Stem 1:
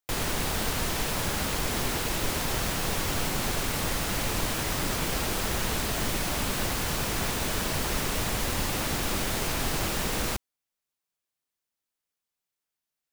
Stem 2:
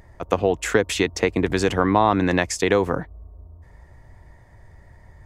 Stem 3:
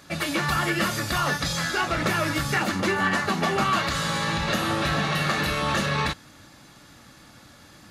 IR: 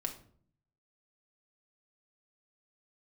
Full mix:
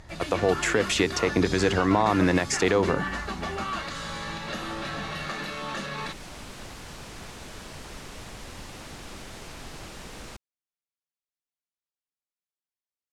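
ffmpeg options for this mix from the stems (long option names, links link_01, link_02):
-filter_complex "[0:a]volume=-12dB,afade=type=in:start_time=5.94:duration=0.28:silence=0.421697[link_01];[1:a]bandreject=frequency=65.3:width_type=h:width=4,bandreject=frequency=130.6:width_type=h:width=4,bandreject=frequency=195.9:width_type=h:width=4,bandreject=frequency=261.2:width_type=h:width=4,bandreject=frequency=326.5:width_type=h:width=4,bandreject=frequency=391.8:width_type=h:width=4,volume=1dB[link_02];[2:a]highpass=frequency=160:width=0.5412,highpass=frequency=160:width=1.3066,volume=-8.5dB[link_03];[link_01][link_02]amix=inputs=2:normalize=0,alimiter=limit=-10.5dB:level=0:latency=1:release=133,volume=0dB[link_04];[link_03][link_04]amix=inputs=2:normalize=0,lowpass=8600"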